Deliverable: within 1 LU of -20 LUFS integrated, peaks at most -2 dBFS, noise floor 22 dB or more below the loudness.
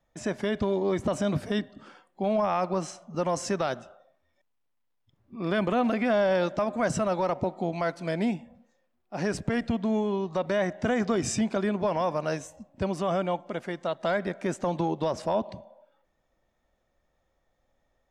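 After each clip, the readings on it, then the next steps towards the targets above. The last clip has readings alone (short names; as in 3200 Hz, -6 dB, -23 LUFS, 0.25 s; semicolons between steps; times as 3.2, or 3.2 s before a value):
loudness -28.5 LUFS; peak -17.5 dBFS; loudness target -20.0 LUFS
-> gain +8.5 dB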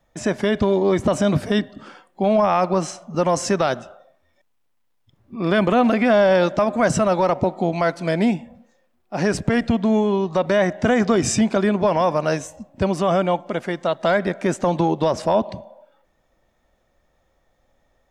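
loudness -20.0 LUFS; peak -9.0 dBFS; noise floor -66 dBFS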